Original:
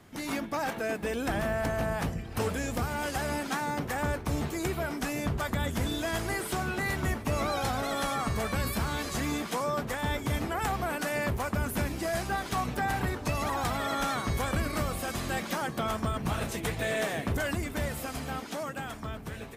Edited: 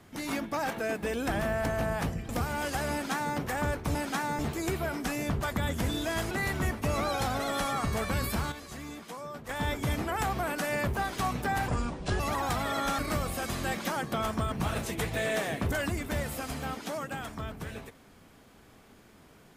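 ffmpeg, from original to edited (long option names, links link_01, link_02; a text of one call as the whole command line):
ffmpeg -i in.wav -filter_complex "[0:a]asplit=11[link_01][link_02][link_03][link_04][link_05][link_06][link_07][link_08][link_09][link_10][link_11];[link_01]atrim=end=2.292[link_12];[link_02]atrim=start=2.698:end=4.362[link_13];[link_03]atrim=start=3.328:end=3.772[link_14];[link_04]atrim=start=4.358:end=6.282[link_15];[link_05]atrim=start=6.738:end=8.95,asetpts=PTS-STARTPTS,afade=type=out:start_time=1.852:duration=0.36:curve=log:silence=0.298538[link_16];[link_06]atrim=start=8.95:end=9.92,asetpts=PTS-STARTPTS,volume=-10.5dB[link_17];[link_07]atrim=start=9.92:end=11.402,asetpts=PTS-STARTPTS,afade=type=in:duration=0.36:curve=log:silence=0.298538[link_18];[link_08]atrim=start=12.298:end=13.014[link_19];[link_09]atrim=start=13.01:end=13.34,asetpts=PTS-STARTPTS,asetrate=28224,aresample=44100,atrim=end_sample=22739,asetpts=PTS-STARTPTS[link_20];[link_10]atrim=start=13.336:end=14.132[link_21];[link_11]atrim=start=14.638[link_22];[link_12][link_13]acrossfade=duration=0.004:curve1=hsin:curve2=hsin[link_23];[link_23][link_14]acrossfade=duration=0.004:curve1=hsin:curve2=hsin[link_24];[link_24][link_15]acrossfade=duration=0.004:curve1=hsin:curve2=hsin[link_25];[link_16][link_17][link_18]concat=n=3:v=0:a=1[link_26];[link_25][link_26]acrossfade=duration=0.004:curve1=hsin:curve2=hsin[link_27];[link_27][link_19]acrossfade=duration=0.004:curve1=hsin:curve2=hsin[link_28];[link_28][link_20]acrossfade=duration=0.004:curve1=hsin:curve2=hsin[link_29];[link_29][link_21]acrossfade=duration=0.004:curve1=hsin:curve2=hsin[link_30];[link_30][link_22]acrossfade=duration=0.004:curve1=hsin:curve2=hsin" out.wav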